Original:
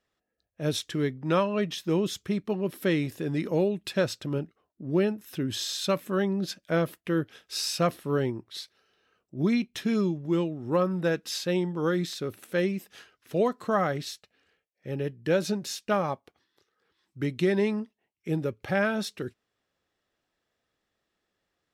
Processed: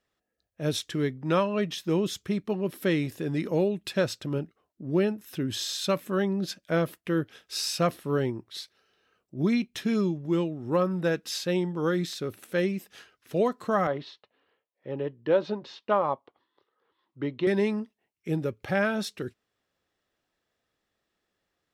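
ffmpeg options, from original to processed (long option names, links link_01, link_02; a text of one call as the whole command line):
ffmpeg -i in.wav -filter_complex "[0:a]asettb=1/sr,asplit=3[link_01][link_02][link_03];[link_01]atrim=end=13.874[link_04];[link_02]atrim=start=13.87:end=17.47,asetpts=PTS-STARTPTS,afade=type=in:duration=0.004:curve=qsin,afade=type=out:start_time=3.596:duration=0.004:curve=qsin,highpass=150,equalizer=frequency=180:width_type=q:width=4:gain=-9,equalizer=frequency=550:width_type=q:width=4:gain=3,equalizer=frequency=1000:width_type=q:width=4:gain=9,equalizer=frequency=1600:width_type=q:width=4:gain=-5,equalizer=frequency=2400:width_type=q:width=4:gain=-7,lowpass=frequency=3500:width=0.5412,lowpass=frequency=3500:width=1.3066[link_05];[link_03]atrim=start=17.466[link_06];[link_04][link_05]acrossfade=duration=0.004:curve1=hsin:curve2=qsin[link_07];[link_07][link_06]acrossfade=duration=0.004:curve1=qsin:curve2=hsin" out.wav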